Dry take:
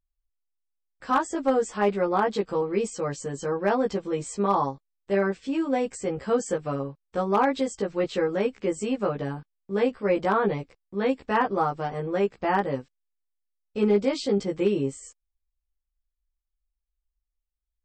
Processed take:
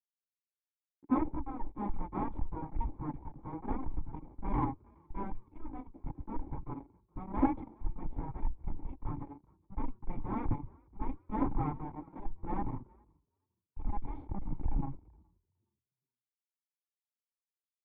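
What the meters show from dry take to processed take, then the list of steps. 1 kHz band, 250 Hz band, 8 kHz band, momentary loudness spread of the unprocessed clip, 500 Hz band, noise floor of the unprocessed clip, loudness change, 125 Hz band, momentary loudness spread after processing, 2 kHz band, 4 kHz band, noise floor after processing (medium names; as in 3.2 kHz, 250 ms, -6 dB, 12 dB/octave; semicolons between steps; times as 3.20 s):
-13.0 dB, -10.0 dB, under -40 dB, 9 LU, -24.0 dB, -83 dBFS, -13.0 dB, -5.0 dB, 14 LU, -23.0 dB, under -35 dB, under -85 dBFS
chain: comb filter that takes the minimum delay 3.8 ms; elliptic band-stop 120–1100 Hz, stop band 40 dB; bass shelf 340 Hz +10 dB; fuzz box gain 31 dB, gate -38 dBFS; cascade formant filter u; saturation -27.5 dBFS, distortion -19 dB; on a send: frequency-shifting echo 418 ms, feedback 40%, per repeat +37 Hz, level -19 dB; on the sum: three bands expanded up and down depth 100%; trim +4 dB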